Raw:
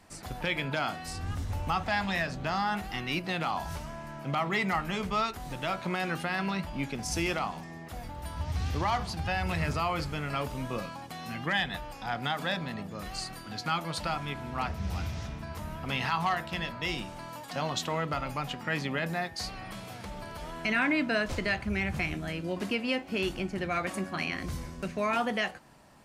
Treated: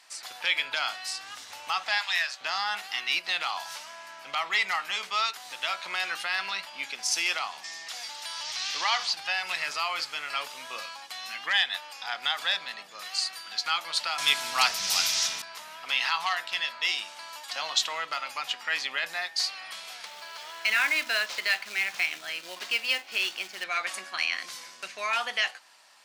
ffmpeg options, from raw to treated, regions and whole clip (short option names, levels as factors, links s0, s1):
-filter_complex "[0:a]asettb=1/sr,asplit=3[s0][s1][s2];[s0]atrim=end=1.984[s3];[s1]atrim=start=1.98:end=2.41,asetpts=PTS-STARTPTS,afade=t=in:d=0.004:c=qsin,afade=t=out:st=0.426:d=0.004:c=qsin,highpass=830,highshelf=f=12000:g=5[s4];[s2]atrim=start=2.406[s5];[s3][s4]acrossfade=d=0.004:c1=hsin:c2=qsin[s6];[s6][s5]acrossfade=d=0.004:c1=qsin:c2=hsin,asettb=1/sr,asplit=3[s7][s8][s9];[s7]atrim=end=7.644[s10];[s8]atrim=start=7.64:end=9.13,asetpts=PTS-STARTPTS,afade=t=in:d=0.004:c=qsin,afade=t=out:st=1.486:d=0.004:c=qsin,acrossover=split=3300[s11][s12];[s12]acompressor=threshold=0.00141:ratio=4:attack=1:release=60[s13];[s11][s13]amix=inputs=2:normalize=0,equalizer=f=5900:w=0.58:g=15[s14];[s9]atrim=start=9.126[s15];[s10][s14]acrossfade=d=0.004:c1=hsin:c2=qsin[s16];[s16][s15]acrossfade=d=0.004:c1=qsin:c2=hsin,asettb=1/sr,asplit=3[s17][s18][s19];[s17]atrim=end=14.184[s20];[s18]atrim=start=14.18:end=15.42,asetpts=PTS-STARTPTS,afade=t=in:d=0.004:c=qsin,afade=t=out:st=1.236:d=0.004:c=qsin,bass=f=250:g=5,treble=f=4000:g=13,acontrast=88[s21];[s19]atrim=start=15.416[s22];[s20][s21]acrossfade=d=0.004:c1=hsin:c2=qsin[s23];[s23][s22]acrossfade=d=0.004:c1=qsin:c2=hsin,asettb=1/sr,asplit=3[s24][s25][s26];[s24]atrim=end=20.064[s27];[s25]atrim=start=20.06:end=23.64,asetpts=PTS-STARTPTS,afade=t=in:d=0.004:c=qsin,afade=t=out:st=3.576:d=0.004:c=qsin,lowpass=6800,bandreject=f=50:t=h:w=6,bandreject=f=100:t=h:w=6,bandreject=f=150:t=h:w=6,bandreject=f=200:t=h:w=6,bandreject=f=250:t=h:w=6,bandreject=f=300:t=h:w=6,acrusher=bits=4:mode=log:mix=0:aa=0.000001[s28];[s26]atrim=start=23.636[s29];[s27][s28]acrossfade=d=0.004:c1=hsin:c2=qsin[s30];[s30][s29]acrossfade=d=0.004:c1=qsin:c2=hsin,highpass=930,equalizer=f=4400:w=0.57:g=10"